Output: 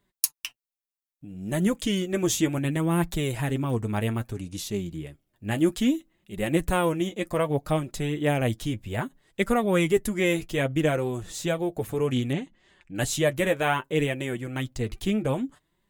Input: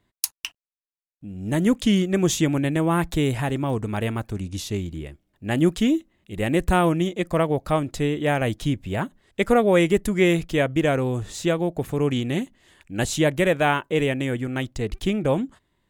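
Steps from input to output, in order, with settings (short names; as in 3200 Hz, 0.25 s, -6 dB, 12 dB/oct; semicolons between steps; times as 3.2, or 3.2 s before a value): high shelf 9300 Hz +9 dB; flange 0.63 Hz, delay 4.9 ms, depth 4.8 ms, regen +29%; 12.33–12.95 air absorption 110 m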